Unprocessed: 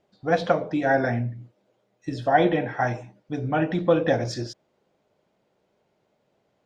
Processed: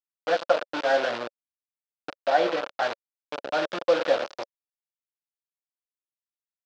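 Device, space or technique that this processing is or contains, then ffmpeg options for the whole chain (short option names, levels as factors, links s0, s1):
hand-held game console: -filter_complex "[0:a]acrusher=bits=3:mix=0:aa=0.000001,highpass=440,equalizer=f=560:t=q:w=4:g=8,equalizer=f=1400:t=q:w=4:g=4,equalizer=f=2000:t=q:w=4:g=-4,lowpass=f=4700:w=0.5412,lowpass=f=4700:w=1.3066,asettb=1/sr,asplit=3[s0][s1][s2];[s0]atrim=end=2.204[s3];[s1]atrim=start=2.2:end=2.83,asetpts=PTS-STARTPTS,afade=t=in:d=0.004:c=qsin,afade=t=out:st=0.626:d=0.004:c=qsin,highshelf=f=6300:g=-6[s4];[s2]atrim=start=2.826[s5];[s3][s4]acrossfade=d=0.004:c1=hsin:c2=qsin[s6];[s6][s5]acrossfade=d=0.004:c1=qsin:c2=hsin,volume=0.631"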